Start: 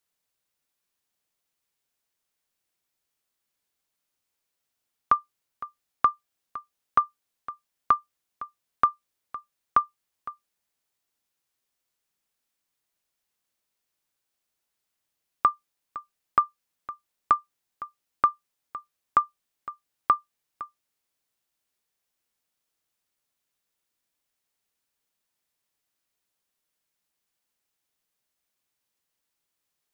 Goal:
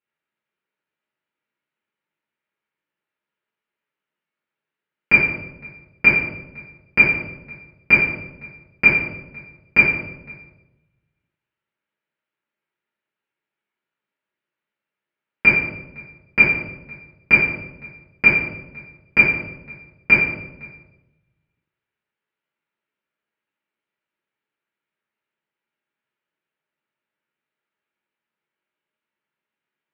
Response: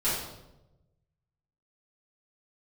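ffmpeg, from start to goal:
-filter_complex "[0:a]aeval=exprs='abs(val(0))':c=same,aeval=exprs='0.398*(cos(1*acos(clip(val(0)/0.398,-1,1)))-cos(1*PI/2))+0.0398*(cos(4*acos(clip(val(0)/0.398,-1,1)))-cos(4*PI/2))+0.0794*(cos(7*acos(clip(val(0)/0.398,-1,1)))-cos(7*PI/2))':c=same,highpass=220,equalizer=f=260:t=q:w=4:g=-3,equalizer=f=470:t=q:w=4:g=-5,equalizer=f=730:t=q:w=4:g=-9,equalizer=f=1.1k:t=q:w=4:g=-5,lowpass=f=2.6k:w=0.5412,lowpass=f=2.6k:w=1.3066[a];[1:a]atrim=start_sample=2205[b];[a][b]afir=irnorm=-1:irlink=0,volume=8dB"

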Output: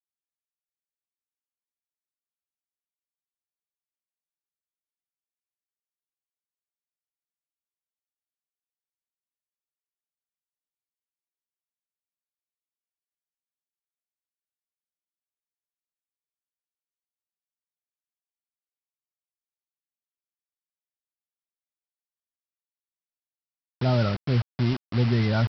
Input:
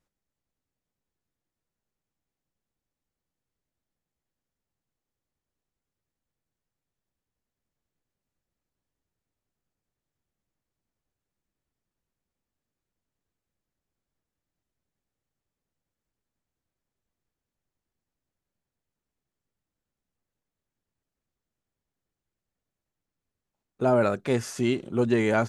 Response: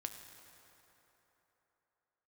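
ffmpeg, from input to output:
-af "afftfilt=real='re*gte(hypot(re,im),0.0891)':imag='im*gte(hypot(re,im),0.0891)':win_size=1024:overlap=0.75,asubboost=boost=9.5:cutoff=120,aresample=11025,acrusher=bits=4:mix=0:aa=0.000001,aresample=44100,volume=-3dB"

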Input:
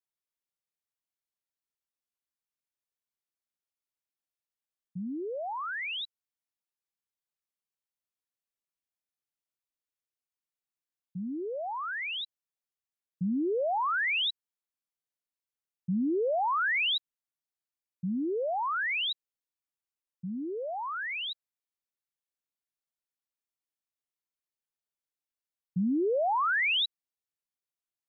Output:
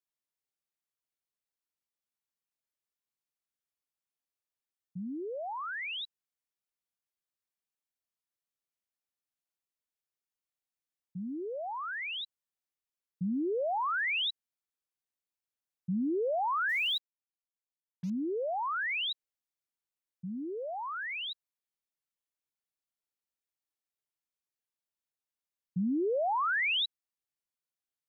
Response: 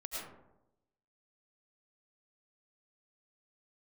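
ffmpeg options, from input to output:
-filter_complex "[0:a]asettb=1/sr,asplit=3[a][b][c];[a]atrim=end=16.694[d];[b]atrim=start=16.69:end=18.1,asetpts=PTS-STARTPTS,afade=t=in:d=0.004:c=qsin,afade=t=out:st=1.406:d=0.004:c=qsin,acrusher=bits=7:mix=0:aa=0.5[e];[c]atrim=start=18.096[f];[d][e]acrossfade=d=0.004:c1=hsin:c2=qsin[g];[g][f]acrossfade=d=0.004:c1=qsin:c2=hsin,volume=-2.5dB"

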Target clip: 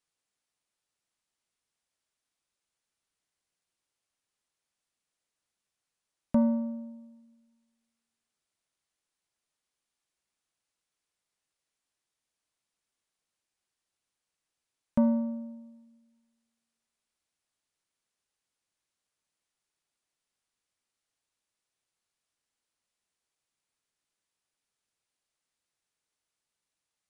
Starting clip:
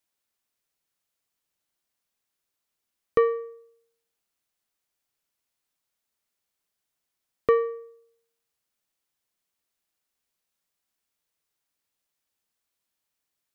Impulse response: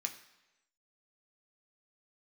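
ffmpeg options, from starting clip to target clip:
-filter_complex "[0:a]asplit=2[a][b];[1:a]atrim=start_sample=2205,adelay=37[c];[b][c]afir=irnorm=-1:irlink=0,volume=-18dB[d];[a][d]amix=inputs=2:normalize=0,asetrate=22050,aresample=44100,volume=-5dB"

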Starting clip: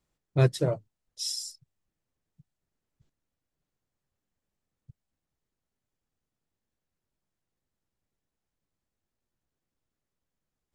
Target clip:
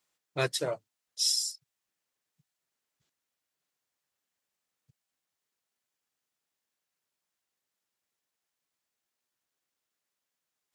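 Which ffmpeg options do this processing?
-af "highpass=f=1.5k:p=1,volume=6dB"

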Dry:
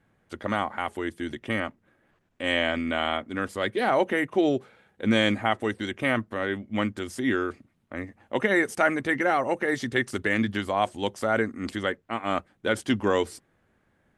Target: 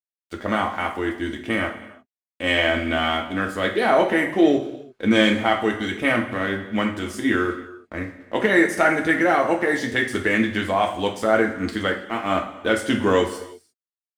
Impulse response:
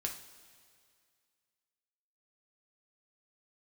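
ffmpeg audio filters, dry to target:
-filter_complex "[0:a]acontrast=33,aeval=exprs='sgn(val(0))*max(abs(val(0))-0.00398,0)':c=same[a];[1:a]atrim=start_sample=2205,afade=t=out:st=0.4:d=0.01,atrim=end_sample=18081[b];[a][b]afir=irnorm=-1:irlink=0"

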